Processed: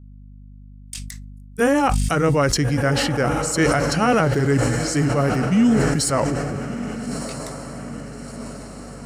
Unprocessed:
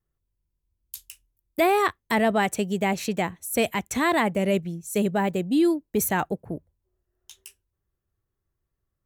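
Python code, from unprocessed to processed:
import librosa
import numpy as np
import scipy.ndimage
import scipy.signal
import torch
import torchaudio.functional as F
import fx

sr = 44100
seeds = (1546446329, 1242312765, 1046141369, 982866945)

p1 = fx.pitch_heads(x, sr, semitones=-6.0)
p2 = fx.low_shelf(p1, sr, hz=170.0, db=-7.0)
p3 = fx.rider(p2, sr, range_db=10, speed_s=2.0)
p4 = p2 + F.gain(torch.from_numpy(p3), -2.0).numpy()
p5 = fx.noise_reduce_blind(p4, sr, reduce_db=9)
p6 = p5 + fx.echo_diffused(p5, sr, ms=1307, feedback_pct=57, wet_db=-11.5, dry=0)
p7 = fx.add_hum(p6, sr, base_hz=50, snr_db=22)
p8 = fx.bass_treble(p7, sr, bass_db=3, treble_db=0)
y = fx.sustainer(p8, sr, db_per_s=22.0)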